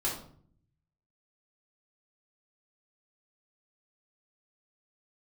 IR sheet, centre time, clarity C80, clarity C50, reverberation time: 34 ms, 9.5 dB, 5.0 dB, 0.55 s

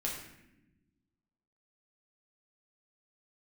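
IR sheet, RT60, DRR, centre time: 0.95 s, −3.0 dB, 43 ms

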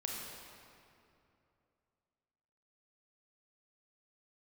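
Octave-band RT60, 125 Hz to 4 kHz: 3.1, 3.0, 2.9, 2.6, 2.2, 1.8 seconds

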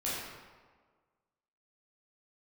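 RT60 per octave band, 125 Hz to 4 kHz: 1.4, 1.5, 1.6, 1.5, 1.2, 0.90 seconds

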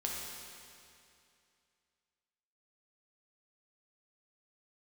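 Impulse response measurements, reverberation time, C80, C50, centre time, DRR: 2.5 s, 1.0 dB, −0.5 dB, 122 ms, −3.0 dB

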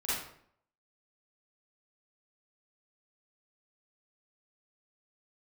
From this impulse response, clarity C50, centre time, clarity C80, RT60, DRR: −3.5 dB, 73 ms, 3.5 dB, 0.65 s, −11.5 dB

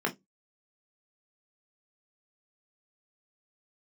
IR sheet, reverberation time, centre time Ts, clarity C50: 0.15 s, 11 ms, 19.0 dB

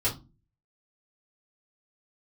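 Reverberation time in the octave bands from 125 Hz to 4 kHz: 0.60, 0.45, 0.30, 0.25, 0.20, 0.20 seconds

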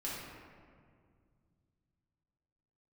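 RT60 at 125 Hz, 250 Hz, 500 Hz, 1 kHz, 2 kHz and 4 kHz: 3.7, 3.0, 2.2, 1.9, 1.6, 1.1 seconds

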